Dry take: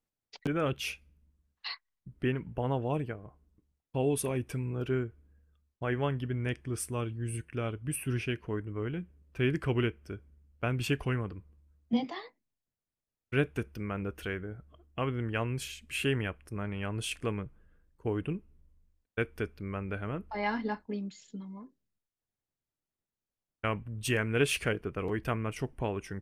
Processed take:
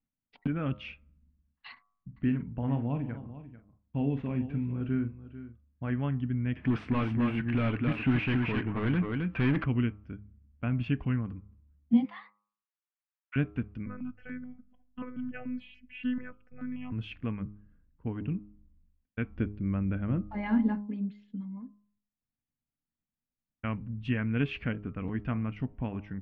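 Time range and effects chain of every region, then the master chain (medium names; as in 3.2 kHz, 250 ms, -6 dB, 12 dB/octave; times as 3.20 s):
1.72–5.90 s: median filter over 9 samples + doubling 43 ms -9.5 dB + delay 443 ms -14.5 dB
6.56–9.64 s: delay 265 ms -7 dB + overdrive pedal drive 29 dB, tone 4 kHz, clips at -18.5 dBFS
12.05–13.36 s: high-pass 920 Hz 24 dB/octave + peaking EQ 1.3 kHz +5 dB 1.6 oct
13.86–16.92 s: robot voice 250 Hz + stepped phaser 6.9 Hz 810–3600 Hz
19.30–20.81 s: bass shelf 380 Hz +6.5 dB + small resonant body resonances 340/540/3300 Hz, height 9 dB, ringing for 85 ms
whole clip: low-pass 3 kHz 24 dB/octave; resonant low shelf 310 Hz +6 dB, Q 3; de-hum 103.1 Hz, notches 13; trim -5 dB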